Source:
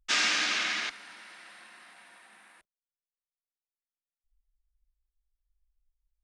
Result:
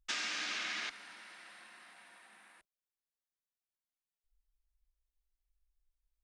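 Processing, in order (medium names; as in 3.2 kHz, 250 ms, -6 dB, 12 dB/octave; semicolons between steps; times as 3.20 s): compression 6:1, threshold -31 dBFS, peak gain reduction 8.5 dB; trim -4 dB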